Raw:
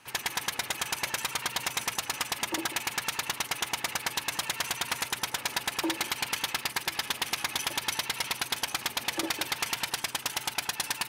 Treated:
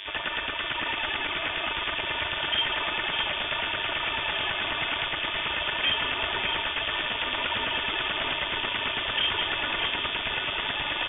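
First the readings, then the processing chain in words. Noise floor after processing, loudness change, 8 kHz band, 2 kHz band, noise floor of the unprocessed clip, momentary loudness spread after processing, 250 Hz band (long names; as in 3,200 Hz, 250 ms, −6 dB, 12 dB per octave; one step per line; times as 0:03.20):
−32 dBFS, +4.0 dB, below −40 dB, +6.0 dB, −44 dBFS, 3 LU, 0.0 dB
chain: comb filter 3.5 ms, depth 93%
hum with harmonics 100 Hz, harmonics 19, −47 dBFS −3 dB per octave
wave folding −25.5 dBFS
high-frequency loss of the air 130 metres
delay that swaps between a low-pass and a high-pass 610 ms, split 1,500 Hz, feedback 79%, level −6 dB
voice inversion scrambler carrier 3,500 Hz
level +7 dB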